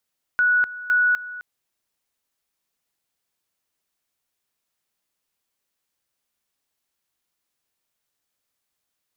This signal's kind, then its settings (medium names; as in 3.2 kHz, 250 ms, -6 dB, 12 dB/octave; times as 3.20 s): two-level tone 1.47 kHz -15 dBFS, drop 16.5 dB, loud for 0.25 s, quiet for 0.26 s, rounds 2